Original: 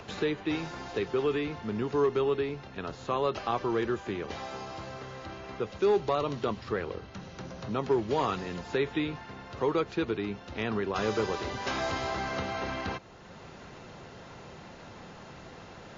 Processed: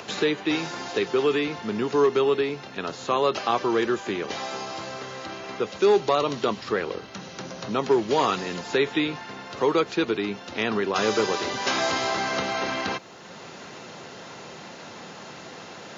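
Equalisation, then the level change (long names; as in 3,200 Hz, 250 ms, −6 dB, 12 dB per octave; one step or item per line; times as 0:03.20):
high-pass filter 180 Hz 12 dB per octave
high-shelf EQ 3,400 Hz +8 dB
+6.0 dB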